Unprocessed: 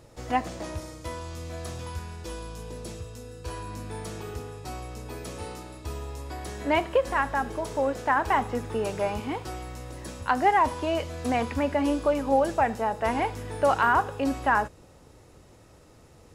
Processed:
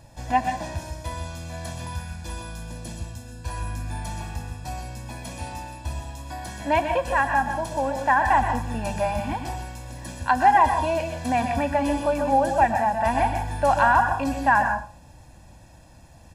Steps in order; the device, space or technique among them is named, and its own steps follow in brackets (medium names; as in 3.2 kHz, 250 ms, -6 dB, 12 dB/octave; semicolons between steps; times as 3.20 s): microphone above a desk (comb 1.2 ms, depth 89%; reverberation RT60 0.35 s, pre-delay 119 ms, DRR 5.5 dB)